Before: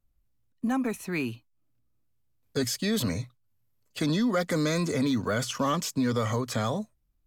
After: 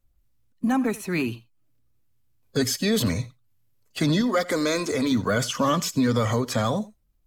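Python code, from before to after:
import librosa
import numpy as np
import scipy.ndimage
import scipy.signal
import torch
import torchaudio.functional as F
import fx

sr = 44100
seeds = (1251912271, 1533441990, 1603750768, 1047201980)

y = fx.spec_quant(x, sr, step_db=15)
y = fx.peak_eq(y, sr, hz=160.0, db=-14.0, octaves=0.7, at=(4.21, 5.12))
y = y + 10.0 ** (-20.0 / 20.0) * np.pad(y, (int(85 * sr / 1000.0), 0))[:len(y)]
y = y * librosa.db_to_amplitude(5.0)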